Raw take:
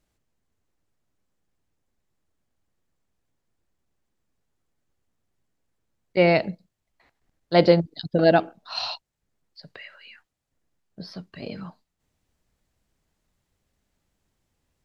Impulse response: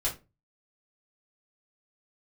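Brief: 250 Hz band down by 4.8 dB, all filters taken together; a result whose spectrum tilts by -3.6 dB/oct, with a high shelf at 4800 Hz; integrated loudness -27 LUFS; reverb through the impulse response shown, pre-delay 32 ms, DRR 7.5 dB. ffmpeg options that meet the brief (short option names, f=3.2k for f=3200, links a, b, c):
-filter_complex "[0:a]equalizer=f=250:t=o:g=-9,highshelf=f=4.8k:g=-4,asplit=2[a][b];[1:a]atrim=start_sample=2205,adelay=32[c];[b][c]afir=irnorm=-1:irlink=0,volume=-13.5dB[d];[a][d]amix=inputs=2:normalize=0,volume=-4dB"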